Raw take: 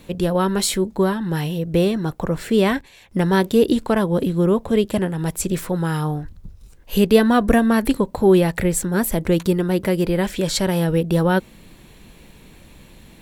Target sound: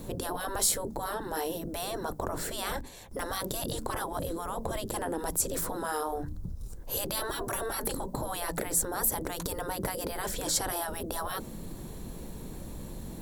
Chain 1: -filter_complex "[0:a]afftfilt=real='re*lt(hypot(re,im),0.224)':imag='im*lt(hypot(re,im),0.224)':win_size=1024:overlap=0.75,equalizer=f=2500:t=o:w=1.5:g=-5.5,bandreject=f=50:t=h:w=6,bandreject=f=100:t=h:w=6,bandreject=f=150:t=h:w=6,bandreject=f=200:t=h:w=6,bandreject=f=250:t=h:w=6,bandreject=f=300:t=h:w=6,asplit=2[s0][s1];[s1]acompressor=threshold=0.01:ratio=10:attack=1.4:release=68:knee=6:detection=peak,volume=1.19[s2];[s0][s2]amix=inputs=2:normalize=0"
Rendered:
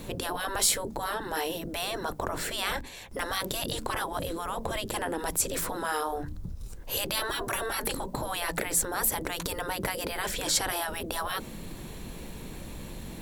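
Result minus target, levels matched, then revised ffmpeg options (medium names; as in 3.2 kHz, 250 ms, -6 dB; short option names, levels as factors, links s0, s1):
2 kHz band +4.0 dB
-filter_complex "[0:a]afftfilt=real='re*lt(hypot(re,im),0.224)':imag='im*lt(hypot(re,im),0.224)':win_size=1024:overlap=0.75,equalizer=f=2500:t=o:w=1.5:g=-16.5,bandreject=f=50:t=h:w=6,bandreject=f=100:t=h:w=6,bandreject=f=150:t=h:w=6,bandreject=f=200:t=h:w=6,bandreject=f=250:t=h:w=6,bandreject=f=300:t=h:w=6,asplit=2[s0][s1];[s1]acompressor=threshold=0.01:ratio=10:attack=1.4:release=68:knee=6:detection=peak,volume=1.19[s2];[s0][s2]amix=inputs=2:normalize=0"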